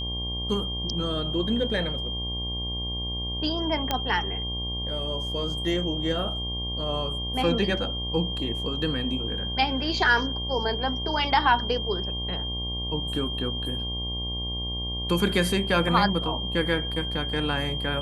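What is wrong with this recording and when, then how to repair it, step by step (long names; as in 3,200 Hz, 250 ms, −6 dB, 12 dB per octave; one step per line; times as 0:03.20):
mains buzz 60 Hz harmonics 19 −33 dBFS
whistle 3,200 Hz −31 dBFS
0:03.91: click −9 dBFS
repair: click removal
hum removal 60 Hz, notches 19
notch filter 3,200 Hz, Q 30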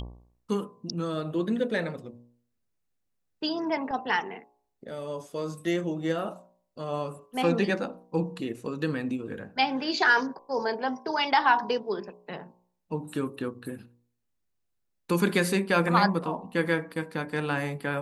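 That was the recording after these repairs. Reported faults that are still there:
none of them is left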